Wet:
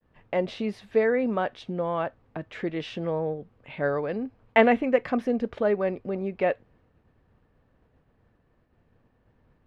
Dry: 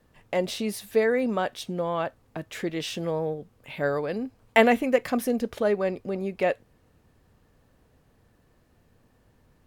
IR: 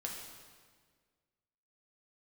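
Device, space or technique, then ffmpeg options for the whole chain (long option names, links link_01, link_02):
hearing-loss simulation: -af "lowpass=2600,agate=range=-33dB:threshold=-58dB:ratio=3:detection=peak"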